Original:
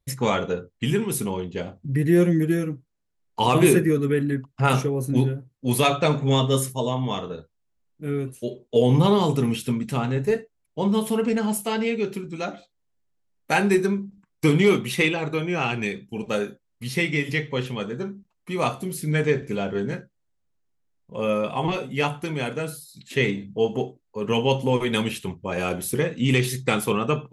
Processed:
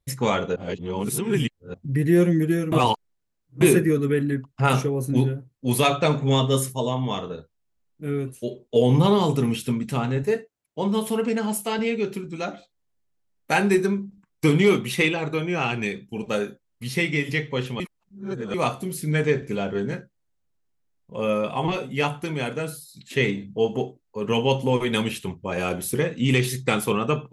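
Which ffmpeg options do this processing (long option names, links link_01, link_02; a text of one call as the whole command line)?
ffmpeg -i in.wav -filter_complex "[0:a]asettb=1/sr,asplit=3[link_01][link_02][link_03];[link_01]atrim=end=10.234[link_04];[link_02]atrim=start=10.23:end=11.79,asetpts=PTS-STARTPTS,afade=type=in:duration=0.004:curve=qsin,afade=type=out:start_time=1.556:duration=0.004:curve=qsin,highpass=frequency=170:poles=1[link_05];[link_03]atrim=start=11.786[link_06];[link_04][link_05]acrossfade=duration=0.004:curve1=hsin:curve2=qsin[link_07];[link_07][link_06]acrossfade=duration=0.004:curve1=qsin:curve2=hsin,asplit=7[link_08][link_09][link_10][link_11][link_12][link_13][link_14];[link_08]atrim=end=0.562[link_15];[link_09]atrim=start=0.558:end=1.742,asetpts=PTS-STARTPTS,areverse[link_16];[link_10]atrim=start=1.738:end=2.722[link_17];[link_11]atrim=start=2.718:end=3.612,asetpts=PTS-STARTPTS,areverse[link_18];[link_12]atrim=start=3.608:end=17.802[link_19];[link_13]atrim=start=17.798:end=18.542,asetpts=PTS-STARTPTS,areverse[link_20];[link_14]atrim=start=18.538[link_21];[link_15][link_16]acrossfade=duration=0.004:curve1=hsin:curve2=hsin[link_22];[link_22][link_17]acrossfade=duration=0.004:curve1=hsin:curve2=hsin[link_23];[link_23][link_18]acrossfade=duration=0.004:curve1=hsin:curve2=hsin[link_24];[link_24][link_19]acrossfade=duration=0.004:curve1=hsin:curve2=hsin[link_25];[link_25][link_20]acrossfade=duration=0.004:curve1=hsin:curve2=hsin[link_26];[link_26][link_21]acrossfade=duration=0.004:curve1=hsin:curve2=hsin" out.wav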